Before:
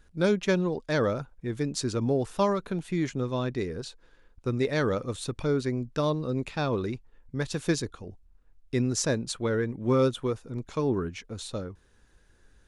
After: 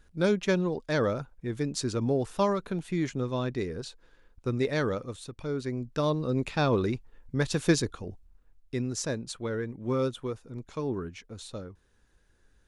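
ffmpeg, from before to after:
-af "volume=3.76,afade=t=out:st=4.73:d=0.58:silence=0.375837,afade=t=in:st=5.31:d=1.32:silence=0.237137,afade=t=out:st=8.08:d=0.71:silence=0.398107"

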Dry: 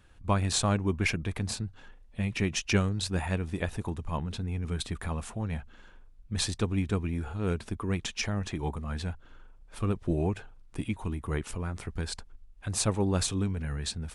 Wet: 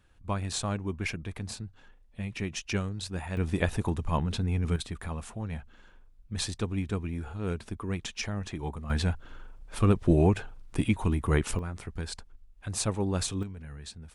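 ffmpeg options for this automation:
-af "asetnsamples=n=441:p=0,asendcmd='3.37 volume volume 4.5dB;4.76 volume volume -2.5dB;8.9 volume volume 6.5dB;11.59 volume volume -2dB;13.43 volume volume -9.5dB',volume=0.562"

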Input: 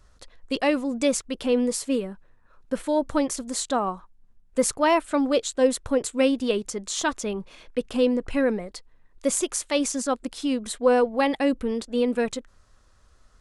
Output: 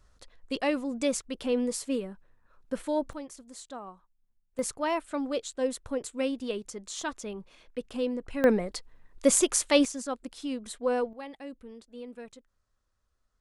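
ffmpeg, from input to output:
-af "asetnsamples=n=441:p=0,asendcmd='3.13 volume volume -17dB;4.59 volume volume -9dB;8.44 volume volume 2dB;9.85 volume volume -8.5dB;11.13 volume volume -19.5dB',volume=0.531"

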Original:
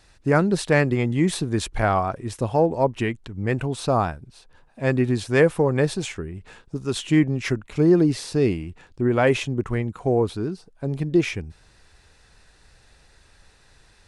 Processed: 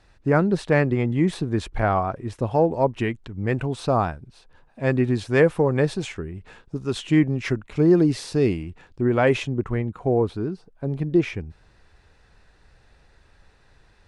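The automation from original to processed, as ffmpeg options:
-af "asetnsamples=n=441:p=0,asendcmd='2.51 lowpass f 4000;7.9 lowpass f 8300;8.63 lowpass f 4500;9.49 lowpass f 2000',lowpass=f=2100:p=1"

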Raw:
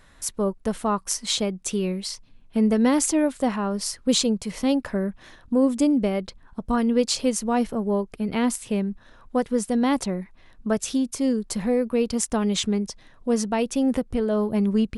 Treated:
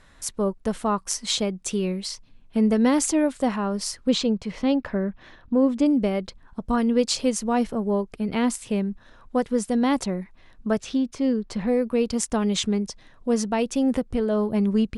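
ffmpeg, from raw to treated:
-af "asetnsamples=n=441:p=0,asendcmd='4.09 lowpass f 3900;5.86 lowpass f 10000;10.8 lowpass f 3900;11.68 lowpass f 9800',lowpass=10000"

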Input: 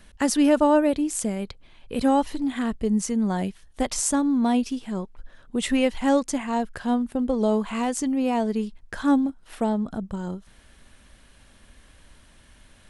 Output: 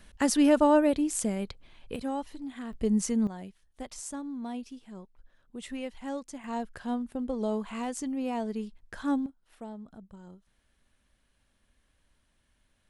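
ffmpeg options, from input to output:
-af "asetnsamples=n=441:p=0,asendcmd='1.96 volume volume -13dB;2.73 volume volume -3dB;3.27 volume volume -15.5dB;6.44 volume volume -8.5dB;9.26 volume volume -18dB',volume=0.708"

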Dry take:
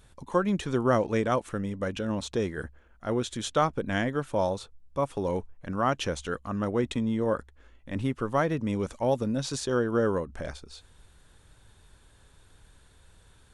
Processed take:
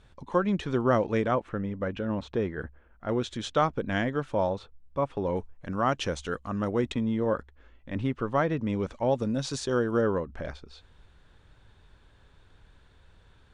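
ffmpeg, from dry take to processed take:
-af "asetnsamples=n=441:p=0,asendcmd='1.31 lowpass f 2400;3.09 lowpass f 5000;4.35 lowpass f 3100;5.37 lowpass f 7500;6.92 lowpass f 4100;9.19 lowpass f 7800;10.01 lowpass f 3800',lowpass=4500"

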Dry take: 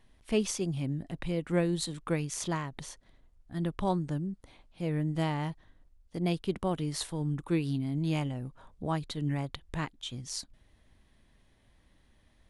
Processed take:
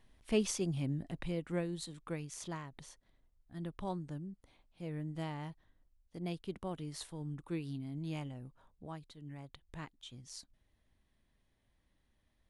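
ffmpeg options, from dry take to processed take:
-af "volume=1.58,afade=t=out:st=1.06:d=0.62:silence=0.446684,afade=t=out:st=8.45:d=0.73:silence=0.375837,afade=t=in:st=9.18:d=0.64:silence=0.446684"

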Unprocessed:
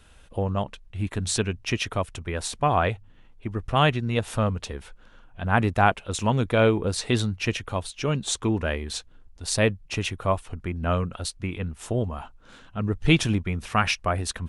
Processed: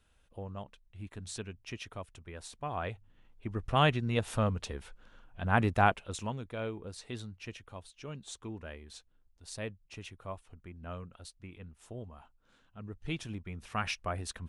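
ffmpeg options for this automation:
-af "volume=1.26,afade=t=in:st=2.7:d=0.97:silence=0.298538,afade=t=out:st=5.83:d=0.57:silence=0.237137,afade=t=in:st=13.26:d=0.68:silence=0.421697"

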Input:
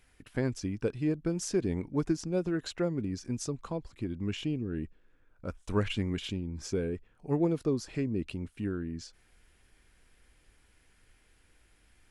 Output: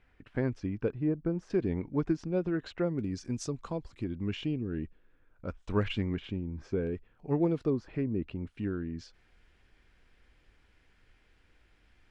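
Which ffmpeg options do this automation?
-af "asetnsamples=n=441:p=0,asendcmd='0.91 lowpass f 1400;1.5 lowpass f 2900;2.99 lowpass f 6900;4.04 lowpass f 4000;6.14 lowpass f 2000;6.87 lowpass f 3900;7.7 lowpass f 2000;8.47 lowpass f 4200',lowpass=2400"

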